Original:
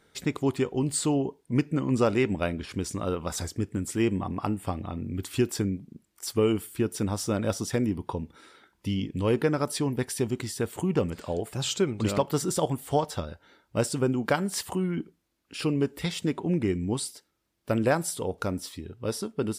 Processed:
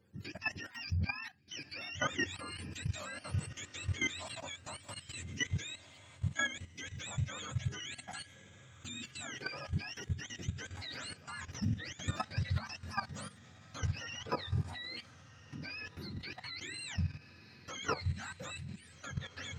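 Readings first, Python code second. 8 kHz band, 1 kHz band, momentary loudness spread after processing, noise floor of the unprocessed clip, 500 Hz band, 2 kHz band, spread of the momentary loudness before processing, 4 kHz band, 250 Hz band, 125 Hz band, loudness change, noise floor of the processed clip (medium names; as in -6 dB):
-11.0 dB, -10.5 dB, 11 LU, -72 dBFS, -21.5 dB, -1.5 dB, 9 LU, -4.5 dB, -18.5 dB, -8.0 dB, -11.0 dB, -58 dBFS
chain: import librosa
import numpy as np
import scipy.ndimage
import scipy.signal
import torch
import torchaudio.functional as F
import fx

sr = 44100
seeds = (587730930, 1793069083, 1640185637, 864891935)

y = fx.octave_mirror(x, sr, pivot_hz=850.0)
y = fx.echo_diffused(y, sr, ms=1535, feedback_pct=43, wet_db=-15.5)
y = fx.level_steps(y, sr, step_db=13)
y = y * 10.0 ** (-5.0 / 20.0)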